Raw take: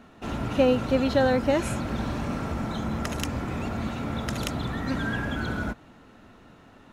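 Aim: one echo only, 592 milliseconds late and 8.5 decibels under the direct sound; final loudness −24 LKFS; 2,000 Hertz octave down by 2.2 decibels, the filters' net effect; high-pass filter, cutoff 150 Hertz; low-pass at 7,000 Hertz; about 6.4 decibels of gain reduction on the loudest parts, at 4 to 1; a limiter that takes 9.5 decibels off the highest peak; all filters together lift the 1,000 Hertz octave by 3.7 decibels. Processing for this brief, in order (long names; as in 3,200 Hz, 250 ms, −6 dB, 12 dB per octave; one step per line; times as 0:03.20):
high-pass filter 150 Hz
low-pass filter 7,000 Hz
parametric band 1,000 Hz +6.5 dB
parametric band 2,000 Hz −6 dB
downward compressor 4 to 1, threshold −23 dBFS
brickwall limiter −24 dBFS
single-tap delay 592 ms −8.5 dB
level +8.5 dB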